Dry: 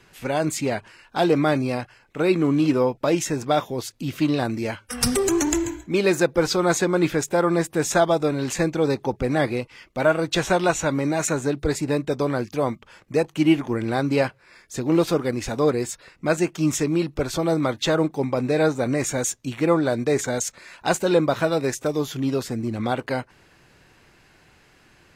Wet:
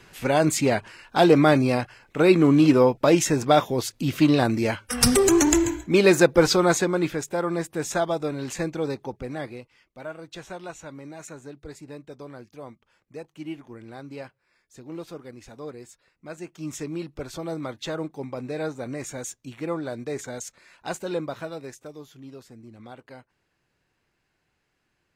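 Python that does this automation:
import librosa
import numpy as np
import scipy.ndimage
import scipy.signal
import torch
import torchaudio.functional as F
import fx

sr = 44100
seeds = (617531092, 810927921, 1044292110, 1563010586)

y = fx.gain(x, sr, db=fx.line((6.47, 3.0), (7.18, -6.0), (8.79, -6.0), (10.03, -17.5), (16.3, -17.5), (16.83, -10.0), (21.17, -10.0), (22.11, -19.0)))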